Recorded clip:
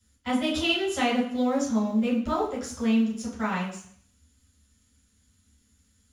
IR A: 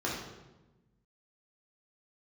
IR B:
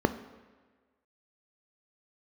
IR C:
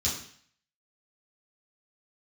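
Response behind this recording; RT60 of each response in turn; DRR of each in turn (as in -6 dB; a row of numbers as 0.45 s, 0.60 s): C; 1.1 s, 1.5 s, 0.55 s; -5.0 dB, 10.5 dB, -8.5 dB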